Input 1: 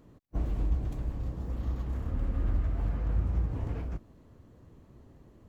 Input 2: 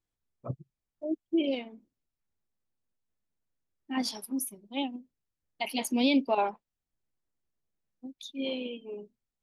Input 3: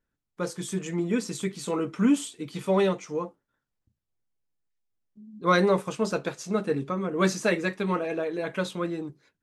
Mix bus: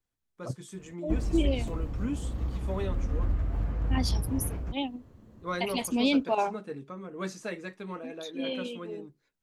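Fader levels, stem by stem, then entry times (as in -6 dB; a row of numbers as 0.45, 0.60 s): +0.5, 0.0, -12.0 dB; 0.75, 0.00, 0.00 s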